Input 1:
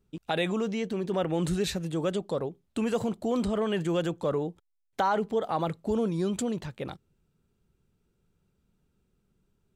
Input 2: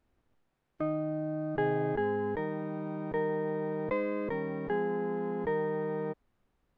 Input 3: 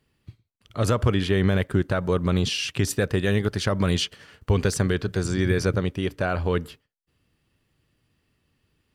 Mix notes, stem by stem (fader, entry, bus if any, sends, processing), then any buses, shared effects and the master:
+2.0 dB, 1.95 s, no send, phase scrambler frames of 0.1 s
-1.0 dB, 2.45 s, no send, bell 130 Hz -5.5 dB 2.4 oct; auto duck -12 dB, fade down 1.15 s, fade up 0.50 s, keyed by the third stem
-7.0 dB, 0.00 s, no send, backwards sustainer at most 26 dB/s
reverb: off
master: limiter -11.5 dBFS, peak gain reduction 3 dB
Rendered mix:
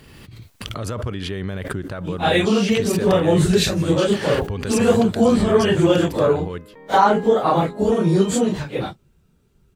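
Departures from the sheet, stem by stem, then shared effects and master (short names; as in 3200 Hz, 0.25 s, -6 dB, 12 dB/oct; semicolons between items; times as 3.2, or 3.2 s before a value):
stem 1 +2.0 dB -> +11.5 dB; master: missing limiter -11.5 dBFS, peak gain reduction 3 dB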